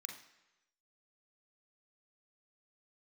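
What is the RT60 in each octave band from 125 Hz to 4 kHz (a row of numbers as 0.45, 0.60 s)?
0.95, 0.85, 1.0, 1.0, 1.0, 0.95 s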